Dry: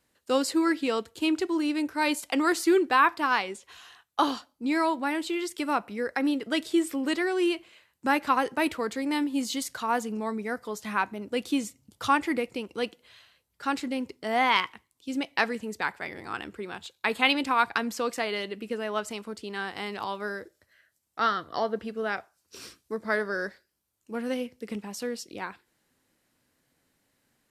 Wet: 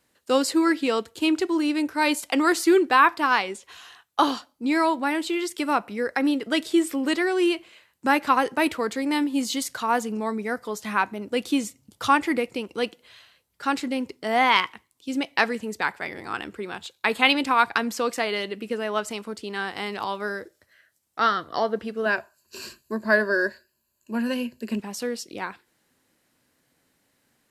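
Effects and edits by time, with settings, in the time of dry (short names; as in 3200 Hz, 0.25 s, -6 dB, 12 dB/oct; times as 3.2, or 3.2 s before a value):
22.05–24.8 ripple EQ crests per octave 1.4, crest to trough 13 dB
whole clip: low shelf 71 Hz -7 dB; gain +4 dB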